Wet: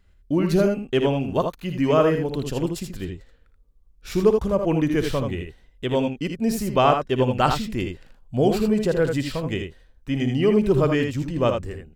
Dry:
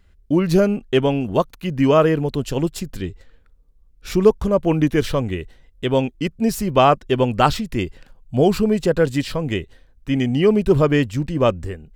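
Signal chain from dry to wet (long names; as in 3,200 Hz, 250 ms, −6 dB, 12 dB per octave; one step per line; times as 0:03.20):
ambience of single reflections 57 ms −12.5 dB, 80 ms −6 dB
level −4.5 dB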